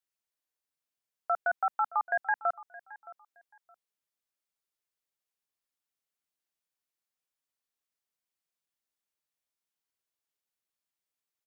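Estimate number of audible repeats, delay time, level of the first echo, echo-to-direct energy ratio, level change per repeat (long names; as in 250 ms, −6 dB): 2, 619 ms, −19.0 dB, −19.0 dB, −13.5 dB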